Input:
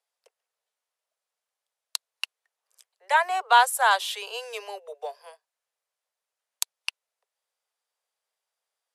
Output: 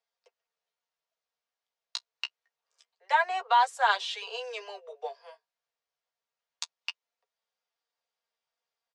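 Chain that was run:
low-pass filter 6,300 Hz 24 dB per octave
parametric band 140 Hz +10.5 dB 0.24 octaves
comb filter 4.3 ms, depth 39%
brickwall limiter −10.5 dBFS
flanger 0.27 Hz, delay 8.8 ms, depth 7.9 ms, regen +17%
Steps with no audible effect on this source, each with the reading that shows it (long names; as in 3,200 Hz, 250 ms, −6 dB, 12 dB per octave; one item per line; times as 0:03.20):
parametric band 140 Hz: nothing at its input below 360 Hz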